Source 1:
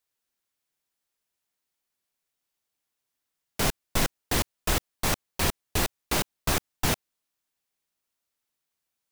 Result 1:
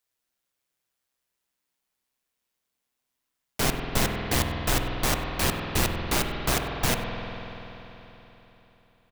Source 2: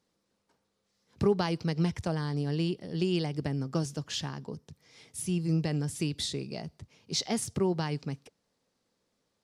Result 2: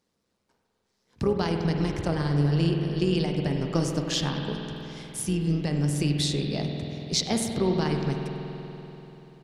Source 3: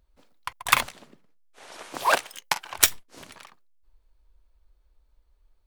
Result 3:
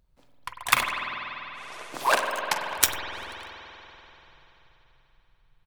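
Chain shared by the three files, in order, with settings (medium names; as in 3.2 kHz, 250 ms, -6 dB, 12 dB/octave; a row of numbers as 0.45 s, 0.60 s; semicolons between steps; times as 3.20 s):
gain riding within 3 dB 0.5 s; AM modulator 130 Hz, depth 30%; delay 96 ms -22 dB; spring tank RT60 3.7 s, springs 48 ms, chirp 35 ms, DRR 2.5 dB; normalise loudness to -27 LUFS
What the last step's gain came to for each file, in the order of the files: +2.5 dB, +5.5 dB, +0.5 dB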